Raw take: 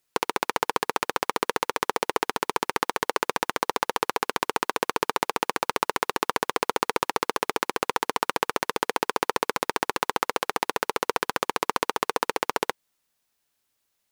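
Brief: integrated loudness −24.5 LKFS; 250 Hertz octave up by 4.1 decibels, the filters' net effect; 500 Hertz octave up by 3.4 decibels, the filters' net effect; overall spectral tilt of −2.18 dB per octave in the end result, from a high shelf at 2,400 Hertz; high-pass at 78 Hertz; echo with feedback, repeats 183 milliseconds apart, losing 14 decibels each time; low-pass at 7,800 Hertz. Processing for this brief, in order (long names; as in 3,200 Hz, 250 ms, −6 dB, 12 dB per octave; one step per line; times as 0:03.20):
high-pass filter 78 Hz
low-pass filter 7,800 Hz
parametric band 250 Hz +4.5 dB
parametric band 500 Hz +3 dB
high-shelf EQ 2,400 Hz −7 dB
repeating echo 183 ms, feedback 20%, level −14 dB
level +2.5 dB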